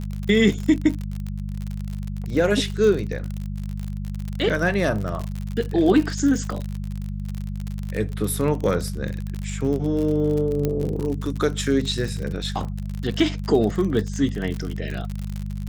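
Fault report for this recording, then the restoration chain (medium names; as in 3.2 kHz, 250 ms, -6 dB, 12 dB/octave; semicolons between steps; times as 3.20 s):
crackle 54 per s -26 dBFS
hum 50 Hz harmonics 4 -29 dBFS
10.65 s: pop -11 dBFS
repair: de-click; de-hum 50 Hz, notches 4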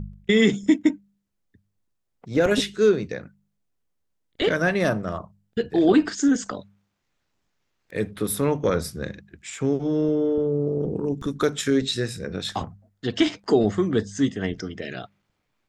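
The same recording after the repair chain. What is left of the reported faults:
nothing left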